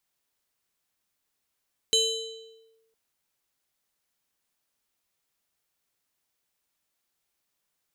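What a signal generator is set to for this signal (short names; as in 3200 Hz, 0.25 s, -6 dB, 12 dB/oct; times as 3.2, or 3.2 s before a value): FM tone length 1.01 s, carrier 449 Hz, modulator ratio 7.82, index 1.8, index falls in 0.89 s linear, decay 1.09 s, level -17 dB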